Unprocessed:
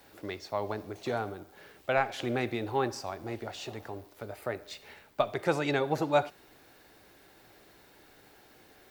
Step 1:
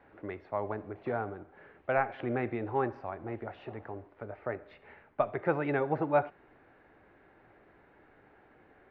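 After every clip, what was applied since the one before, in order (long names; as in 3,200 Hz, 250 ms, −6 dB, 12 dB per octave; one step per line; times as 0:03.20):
low-pass filter 2,100 Hz 24 dB per octave
level −1 dB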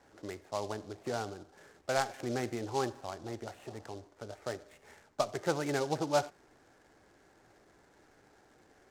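short delay modulated by noise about 4,500 Hz, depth 0.046 ms
level −2.5 dB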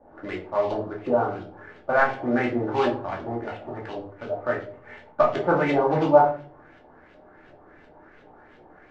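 auto-filter low-pass saw up 2.8 Hz 590–3,300 Hz
rectangular room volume 290 cubic metres, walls furnished, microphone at 2.5 metres
level +4 dB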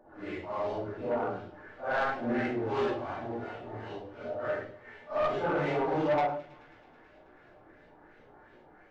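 random phases in long frames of 200 ms
soft clipping −17 dBFS, distortion −12 dB
delay with a high-pass on its return 108 ms, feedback 82%, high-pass 2,000 Hz, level −19 dB
level −5.5 dB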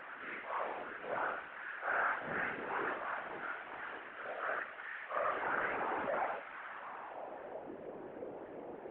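linear delta modulator 16 kbit/s, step −39.5 dBFS
band-pass filter sweep 1,500 Hz → 450 Hz, 0:06.57–0:07.74
random phases in short frames
level +5.5 dB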